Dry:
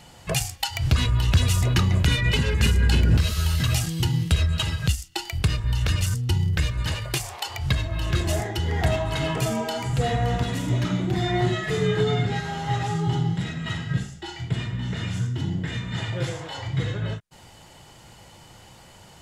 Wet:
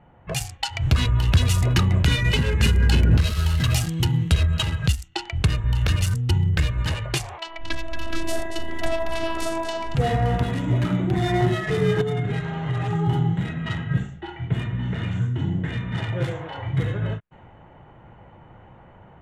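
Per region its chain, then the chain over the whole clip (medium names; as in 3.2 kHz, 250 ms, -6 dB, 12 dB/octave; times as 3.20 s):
7.38–9.95 s: robot voice 330 Hz + bit-crushed delay 229 ms, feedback 35%, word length 8-bit, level -7 dB
12.01–12.93 s: band-stop 820 Hz, Q 15 + comb 6.6 ms, depth 38% + compression 12:1, threshold -22 dBFS
whole clip: local Wiener filter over 9 samples; level-controlled noise filter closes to 1.5 kHz, open at -21 dBFS; level rider gain up to 6 dB; trim -3.5 dB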